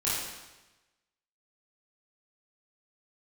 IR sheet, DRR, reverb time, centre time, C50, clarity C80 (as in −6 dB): −9.5 dB, 1.1 s, 87 ms, −1.5 dB, 1.5 dB